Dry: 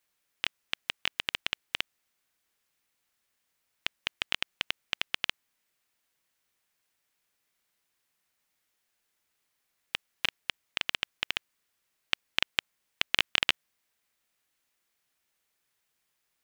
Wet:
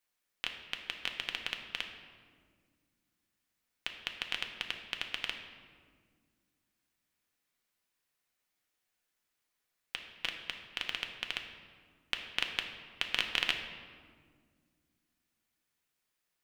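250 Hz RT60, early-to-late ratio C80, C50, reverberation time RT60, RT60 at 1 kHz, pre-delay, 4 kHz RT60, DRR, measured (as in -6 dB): 3.1 s, 8.0 dB, 6.5 dB, 1.8 s, 1.6 s, 3 ms, 1.1 s, 3.5 dB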